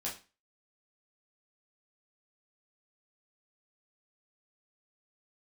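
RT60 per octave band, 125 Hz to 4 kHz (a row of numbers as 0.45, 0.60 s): 0.30, 0.35, 0.30, 0.35, 0.30, 0.30 s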